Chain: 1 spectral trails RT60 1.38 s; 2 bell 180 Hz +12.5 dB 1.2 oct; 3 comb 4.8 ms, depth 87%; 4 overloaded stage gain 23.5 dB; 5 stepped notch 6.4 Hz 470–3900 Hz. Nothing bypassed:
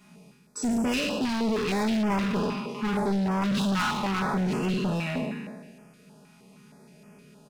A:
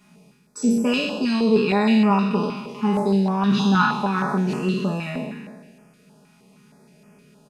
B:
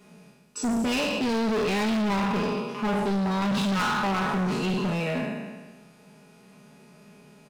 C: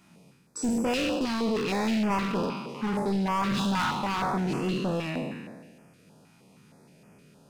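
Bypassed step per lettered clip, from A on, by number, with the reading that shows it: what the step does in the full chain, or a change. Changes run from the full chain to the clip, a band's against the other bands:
4, distortion -6 dB; 5, 125 Hz band -1.5 dB; 3, 1 kHz band +2.5 dB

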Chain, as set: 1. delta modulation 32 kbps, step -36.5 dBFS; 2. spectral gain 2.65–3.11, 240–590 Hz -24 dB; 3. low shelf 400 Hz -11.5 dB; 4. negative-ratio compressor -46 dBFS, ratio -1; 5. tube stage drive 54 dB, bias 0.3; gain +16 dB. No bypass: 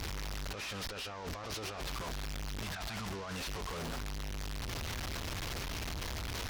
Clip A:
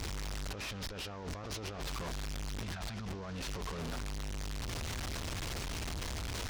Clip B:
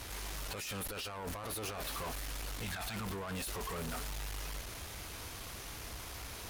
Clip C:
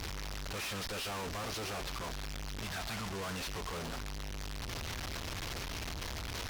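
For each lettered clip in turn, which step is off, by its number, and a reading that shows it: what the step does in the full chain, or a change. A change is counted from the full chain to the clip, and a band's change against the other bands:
3, 125 Hz band +2.0 dB; 1, 8 kHz band +4.0 dB; 4, momentary loudness spread change +2 LU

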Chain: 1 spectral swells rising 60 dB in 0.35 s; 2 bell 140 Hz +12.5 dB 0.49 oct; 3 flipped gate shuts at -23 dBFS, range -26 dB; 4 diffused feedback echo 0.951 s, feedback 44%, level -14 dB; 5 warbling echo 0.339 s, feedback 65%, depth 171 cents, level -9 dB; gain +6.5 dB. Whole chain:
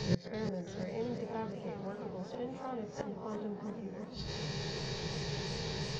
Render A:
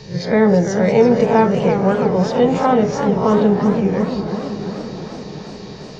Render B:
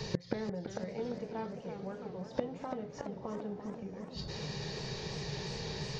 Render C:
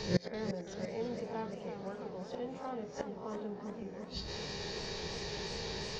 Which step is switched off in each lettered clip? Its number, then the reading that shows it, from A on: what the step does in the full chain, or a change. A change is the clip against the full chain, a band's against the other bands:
3, momentary loudness spread change +12 LU; 1, 125 Hz band -1.5 dB; 2, 125 Hz band -4.0 dB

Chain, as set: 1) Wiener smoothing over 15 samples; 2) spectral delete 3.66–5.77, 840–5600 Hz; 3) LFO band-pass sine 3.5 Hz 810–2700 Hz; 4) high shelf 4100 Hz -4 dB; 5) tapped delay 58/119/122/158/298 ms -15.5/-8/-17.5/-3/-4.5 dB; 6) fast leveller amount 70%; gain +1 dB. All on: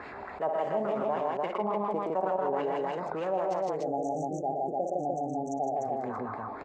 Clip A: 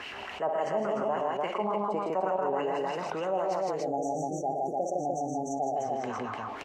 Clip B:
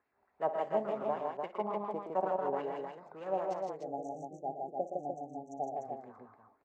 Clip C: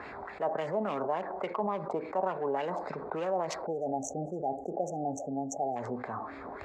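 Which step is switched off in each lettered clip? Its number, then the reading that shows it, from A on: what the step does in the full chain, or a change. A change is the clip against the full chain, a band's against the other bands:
1, 2 kHz band +3.0 dB; 6, crest factor change +4.5 dB; 5, momentary loudness spread change +2 LU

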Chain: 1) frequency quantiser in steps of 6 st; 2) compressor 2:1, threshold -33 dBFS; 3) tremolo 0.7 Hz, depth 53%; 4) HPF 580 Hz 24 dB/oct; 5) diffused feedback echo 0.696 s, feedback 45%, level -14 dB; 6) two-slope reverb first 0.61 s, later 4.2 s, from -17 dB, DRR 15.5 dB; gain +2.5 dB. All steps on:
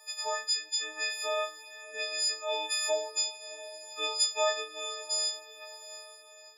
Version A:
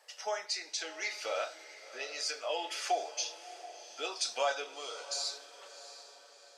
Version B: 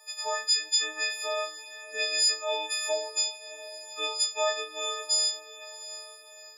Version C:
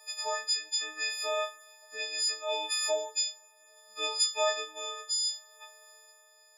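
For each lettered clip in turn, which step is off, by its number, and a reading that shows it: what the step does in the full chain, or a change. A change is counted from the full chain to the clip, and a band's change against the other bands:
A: 1, 250 Hz band +7.5 dB; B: 3, 500 Hz band -2.0 dB; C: 5, echo-to-direct -11.0 dB to -15.5 dB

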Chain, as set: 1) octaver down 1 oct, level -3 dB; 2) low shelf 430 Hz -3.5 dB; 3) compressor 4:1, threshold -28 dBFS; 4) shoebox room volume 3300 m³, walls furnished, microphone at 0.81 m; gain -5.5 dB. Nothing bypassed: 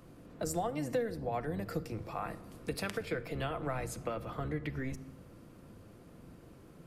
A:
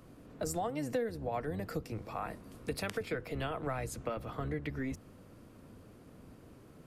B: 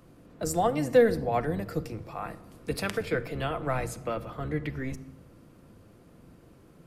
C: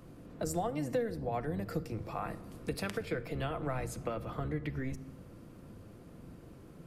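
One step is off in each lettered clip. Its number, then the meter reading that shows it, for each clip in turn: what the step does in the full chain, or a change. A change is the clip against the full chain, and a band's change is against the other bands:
4, echo-to-direct -11.0 dB to none; 3, loudness change +8.0 LU; 2, 125 Hz band +2.5 dB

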